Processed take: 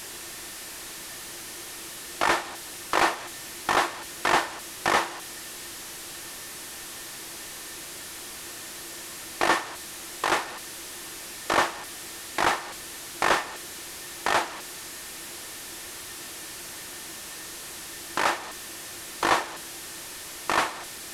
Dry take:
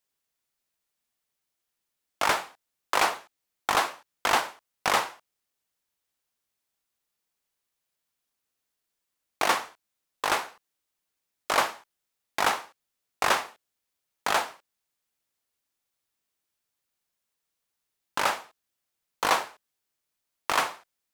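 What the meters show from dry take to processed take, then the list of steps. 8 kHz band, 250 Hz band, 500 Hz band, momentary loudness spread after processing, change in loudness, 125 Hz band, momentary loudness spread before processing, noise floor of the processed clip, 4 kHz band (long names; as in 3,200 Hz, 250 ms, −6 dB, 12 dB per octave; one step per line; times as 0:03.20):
+5.0 dB, +7.5 dB, +2.5 dB, 12 LU, −2.0 dB, +5.5 dB, 13 LU, −40 dBFS, +2.0 dB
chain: linear delta modulator 64 kbit/s, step −33.5 dBFS
hollow resonant body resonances 340/1,800 Hz, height 11 dB, ringing for 90 ms
level +1.5 dB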